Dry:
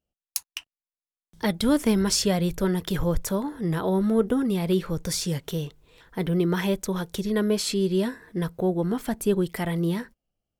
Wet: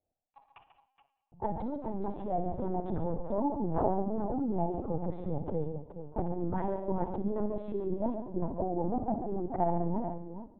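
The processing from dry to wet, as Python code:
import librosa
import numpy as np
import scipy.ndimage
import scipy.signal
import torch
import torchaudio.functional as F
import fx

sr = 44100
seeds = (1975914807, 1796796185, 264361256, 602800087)

y = fx.wiener(x, sr, points=25)
y = fx.over_compress(y, sr, threshold_db=-27.0, ratio=-1.0)
y = fx.lowpass_res(y, sr, hz=790.0, q=4.9)
y = fx.echo_multitap(y, sr, ms=(63, 137, 195, 427), db=(-13.0, -9.0, -20.0, -10.0))
y = fx.rev_schroeder(y, sr, rt60_s=1.1, comb_ms=28, drr_db=11.0)
y = fx.lpc_vocoder(y, sr, seeds[0], excitation='pitch_kept', order=16)
y = y * 10.0 ** (-6.5 / 20.0)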